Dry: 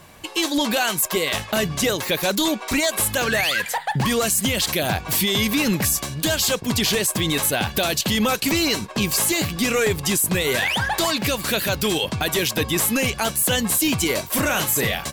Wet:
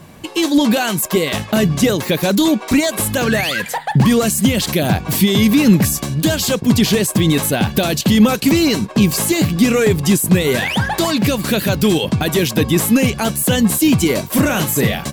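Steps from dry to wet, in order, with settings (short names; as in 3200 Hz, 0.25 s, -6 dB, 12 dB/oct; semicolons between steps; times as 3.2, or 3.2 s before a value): bell 190 Hz +11 dB 2.4 oct; gain +1 dB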